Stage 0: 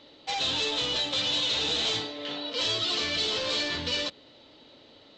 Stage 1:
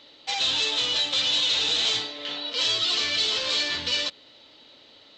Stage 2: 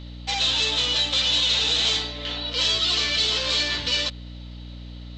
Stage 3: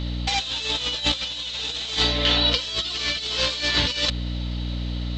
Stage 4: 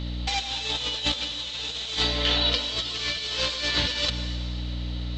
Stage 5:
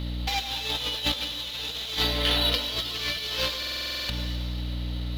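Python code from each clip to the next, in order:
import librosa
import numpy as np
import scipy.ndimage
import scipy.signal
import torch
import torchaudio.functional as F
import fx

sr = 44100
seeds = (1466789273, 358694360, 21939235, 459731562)

y1 = fx.tilt_shelf(x, sr, db=-5.0, hz=930.0)
y2 = fx.add_hum(y1, sr, base_hz=60, snr_db=13)
y2 = y2 * librosa.db_to_amplitude(2.0)
y3 = fx.over_compress(y2, sr, threshold_db=-28.0, ratio=-0.5)
y3 = y3 * librosa.db_to_amplitude(5.0)
y4 = fx.rev_plate(y3, sr, seeds[0], rt60_s=1.8, hf_ratio=0.95, predelay_ms=90, drr_db=8.5)
y4 = y4 * librosa.db_to_amplitude(-3.5)
y5 = scipy.signal.medfilt(y4, 5)
y5 = fx.buffer_glitch(y5, sr, at_s=(3.58,), block=2048, repeats=10)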